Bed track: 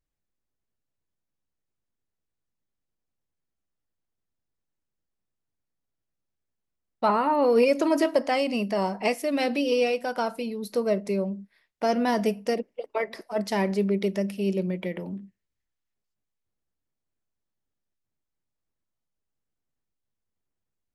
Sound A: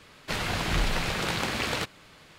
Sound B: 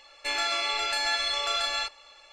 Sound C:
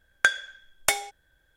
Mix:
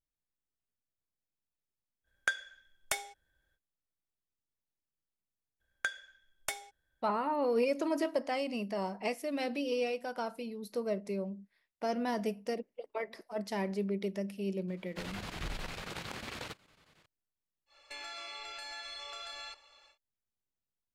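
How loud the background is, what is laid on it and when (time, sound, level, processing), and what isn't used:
bed track -9.5 dB
2.03 s: add C -11 dB, fades 0.05 s
5.60 s: add C -14 dB
14.68 s: add A -12.5 dB + square tremolo 11 Hz, depth 65%, duty 80%
17.66 s: add B -9 dB, fades 0.10 s + compression 4:1, threshold -33 dBFS

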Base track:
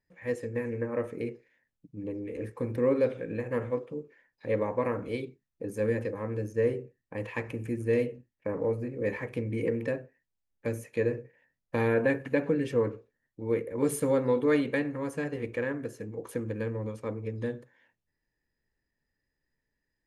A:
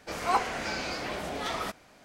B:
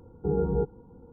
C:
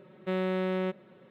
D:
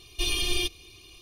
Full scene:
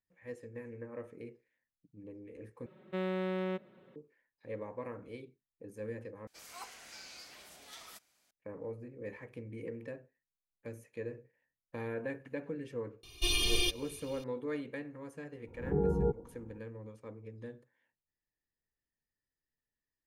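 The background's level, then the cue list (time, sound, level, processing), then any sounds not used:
base track -13 dB
2.66 s: replace with C -5 dB
6.27 s: replace with A -7.5 dB + pre-emphasis filter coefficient 0.9
13.03 s: add D -3 dB
15.47 s: add B -4 dB + swell ahead of each attack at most 120 dB/s

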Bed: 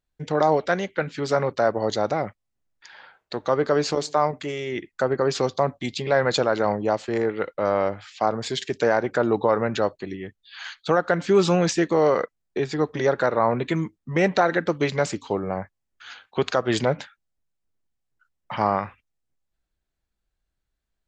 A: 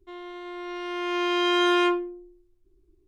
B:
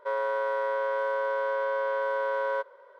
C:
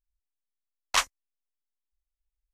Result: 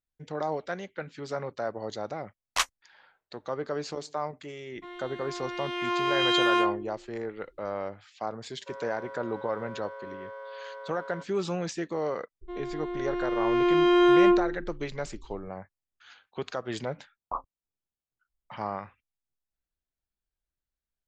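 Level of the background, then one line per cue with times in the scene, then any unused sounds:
bed -11.5 dB
1.62 s: add C -1.5 dB + upward expansion, over -44 dBFS
4.75 s: add A -4 dB + sweeping bell 1.6 Hz 870–3600 Hz +7 dB
8.61 s: add B -13.5 dB
12.41 s: add A -1 dB + tilt EQ -3.5 dB/octave
16.37 s: add C -2.5 dB + steep low-pass 1.2 kHz 96 dB/octave

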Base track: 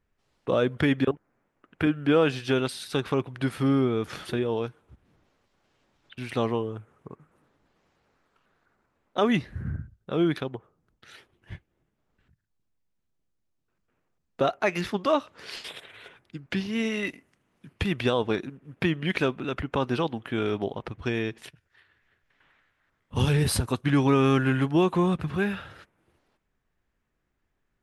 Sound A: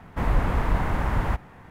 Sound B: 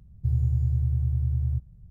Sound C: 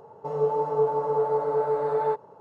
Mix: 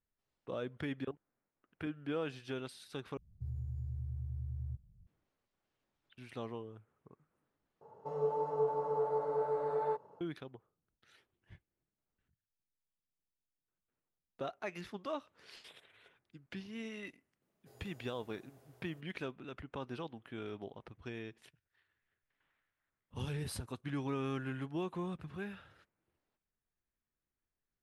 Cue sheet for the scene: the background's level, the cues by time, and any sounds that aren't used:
base track -16.5 dB
3.17 s: replace with B -13.5 dB + peak limiter -20.5 dBFS
7.81 s: replace with C -9.5 dB
17.42 s: add B -0.5 dB + high-pass 390 Hz 24 dB/octave
not used: A

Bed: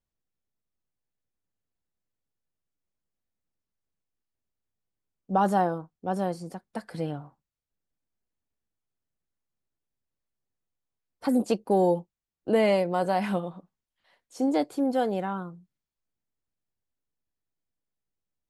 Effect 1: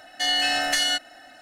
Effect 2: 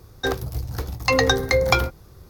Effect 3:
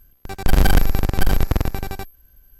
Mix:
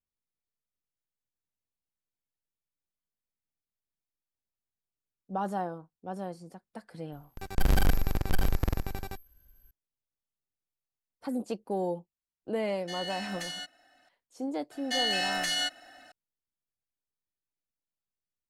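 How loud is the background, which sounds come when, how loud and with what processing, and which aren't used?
bed -9 dB
7.12 s: add 3 -9.5 dB
12.68 s: add 1 -16 dB
14.71 s: add 1 -5.5 dB + peak limiter -14 dBFS
not used: 2

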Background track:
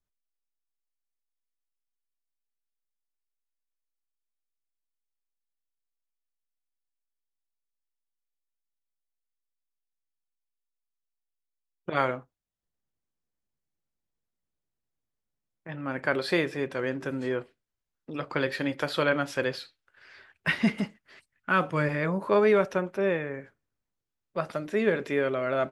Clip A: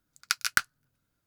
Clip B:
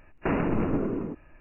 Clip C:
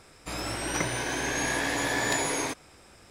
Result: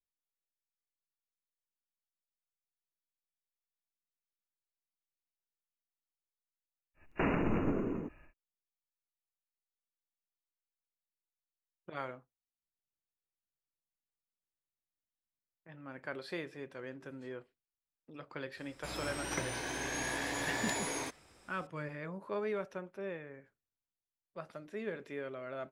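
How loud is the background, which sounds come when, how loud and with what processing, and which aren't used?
background track -15 dB
6.94 s: add B -6 dB, fades 0.10 s + treble shelf 2.4 kHz +9.5 dB
18.57 s: add C -8.5 dB
not used: A

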